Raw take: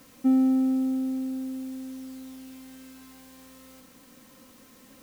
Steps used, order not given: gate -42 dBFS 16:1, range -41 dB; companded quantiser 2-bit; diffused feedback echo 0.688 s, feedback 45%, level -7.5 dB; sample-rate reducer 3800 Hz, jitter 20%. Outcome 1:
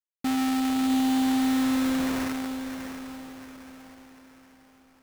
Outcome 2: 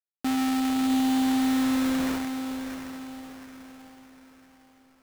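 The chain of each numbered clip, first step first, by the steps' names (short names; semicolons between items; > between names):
companded quantiser > gate > diffused feedback echo > sample-rate reducer; gate > companded quantiser > diffused feedback echo > sample-rate reducer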